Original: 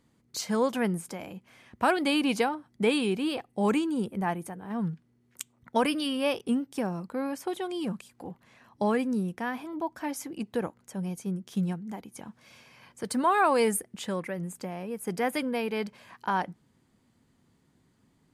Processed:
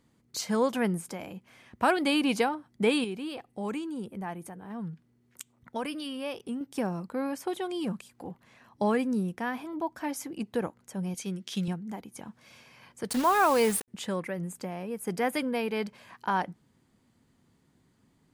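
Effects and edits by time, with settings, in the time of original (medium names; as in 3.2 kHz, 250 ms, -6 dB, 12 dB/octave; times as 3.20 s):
3.04–6.61 s: compression 1.5:1, threshold -45 dBFS
11.14–11.68 s: frequency weighting D
13.10–13.88 s: word length cut 6-bit, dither none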